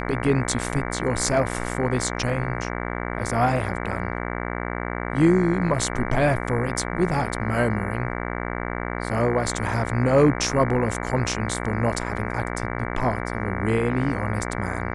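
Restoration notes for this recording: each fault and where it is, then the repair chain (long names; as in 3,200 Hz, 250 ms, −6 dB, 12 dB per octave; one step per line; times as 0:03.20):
mains buzz 60 Hz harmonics 38 −29 dBFS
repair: hum removal 60 Hz, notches 38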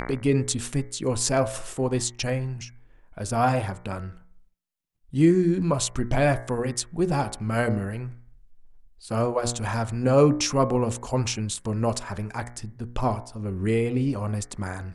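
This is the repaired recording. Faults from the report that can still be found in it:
none of them is left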